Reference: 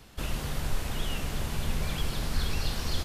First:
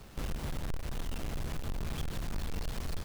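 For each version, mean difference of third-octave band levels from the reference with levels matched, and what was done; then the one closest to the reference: 3.0 dB: square wave that keeps the level; compression 3:1, threshold -31 dBFS, peak gain reduction 10 dB; trim -3.5 dB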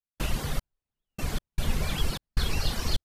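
14.0 dB: reverb removal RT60 0.79 s; trance gate ".xx...x.xxx.xxx" 76 bpm -60 dB; trim +4.5 dB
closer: first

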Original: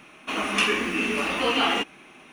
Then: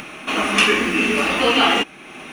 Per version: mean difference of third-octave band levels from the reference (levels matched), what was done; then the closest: 1.5 dB: band-stop 1 kHz, Q 19; in parallel at +2 dB: upward compressor, threshold -29 dBFS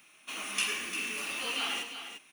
8.0 dB: pre-emphasis filter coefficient 0.9; on a send: multi-tap echo 105/349 ms -11/-9.5 dB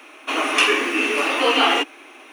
3.5 dB: elliptic high-pass 280 Hz, stop band 40 dB; bit crusher 12-bit; trim +6.5 dB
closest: first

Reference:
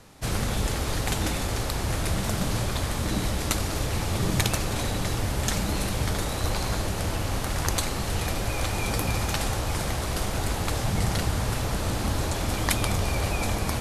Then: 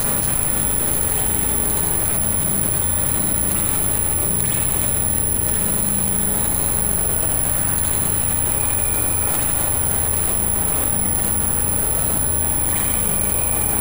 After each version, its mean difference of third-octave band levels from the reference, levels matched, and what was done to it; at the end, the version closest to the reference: 8.0 dB: on a send: two-band feedback delay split 530 Hz, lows 316 ms, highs 92 ms, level -6 dB; on the sum: spring tank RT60 1 s, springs 36/41/48 ms, chirp 40 ms, DRR -10 dB; careless resampling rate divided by 4×, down filtered, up zero stuff; level flattener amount 100%; trim -14.5 dB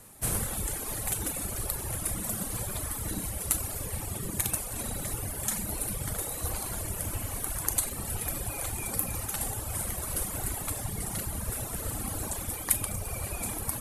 6.0 dB: Schroeder reverb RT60 1.7 s, combs from 29 ms, DRR 3.5 dB; gain riding 0.5 s; reverb removal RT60 2 s; resonant high shelf 7.2 kHz +13 dB, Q 1.5; trim -7.5 dB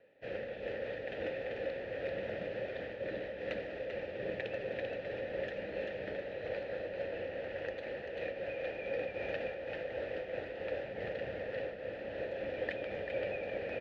13.5 dB: vowel filter e; distance through air 310 m; delay 390 ms -4 dB; random flutter of the level, depth 60%; trim +5.5 dB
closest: second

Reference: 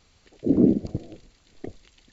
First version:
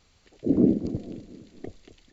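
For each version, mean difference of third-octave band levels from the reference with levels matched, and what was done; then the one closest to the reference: 1.0 dB: feedback delay 235 ms, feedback 46%, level -14 dB; trim -2 dB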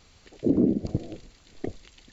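3.5 dB: compression 3:1, threshold -24 dBFS, peak gain reduction 9.5 dB; trim +4 dB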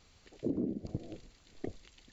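5.5 dB: compression 12:1, threshold -28 dBFS, peak gain reduction 17 dB; trim -2.5 dB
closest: first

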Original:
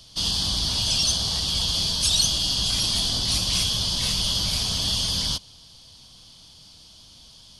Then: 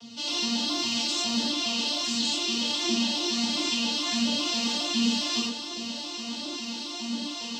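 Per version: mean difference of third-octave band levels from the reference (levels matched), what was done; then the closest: 11.0 dB: vocoder on a broken chord major triad, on A#3, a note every 137 ms; reverse; compression 5:1, threshold -42 dBFS, peak gain reduction 22.5 dB; reverse; phaser 1.4 Hz, delay 2.7 ms, feedback 48%; gated-style reverb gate 140 ms flat, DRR -7 dB; trim +6.5 dB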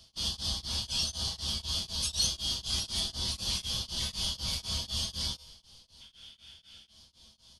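3.5 dB: time-frequency box 6.01–6.89 s, 1.3–3.7 kHz +11 dB; feedback comb 73 Hz, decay 0.34 s, harmonics odd, mix 80%; on a send: frequency-shifting echo 318 ms, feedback 57%, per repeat -33 Hz, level -23.5 dB; on the sum: tremolo of two beating tones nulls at 4 Hz; trim +2 dB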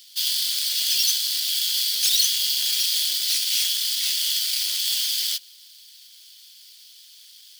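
15.0 dB: square wave that keeps the level; Bessel high-pass 2.9 kHz, order 6; hard clipper -10 dBFS, distortion -29 dB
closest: second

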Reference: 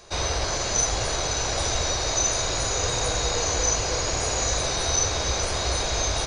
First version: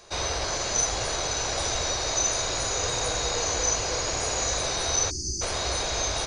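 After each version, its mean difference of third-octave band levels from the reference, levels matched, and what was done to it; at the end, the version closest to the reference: 1.5 dB: bass shelf 200 Hz -5 dB; spectral selection erased 5.10–5.42 s, 390–4400 Hz; trim -1.5 dB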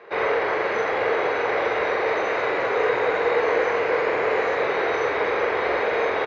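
10.0 dB: cabinet simulation 360–2300 Hz, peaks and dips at 450 Hz +9 dB, 670 Hz -4 dB, 2 kHz +6 dB; doubling 45 ms -4 dB; trim +5 dB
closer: first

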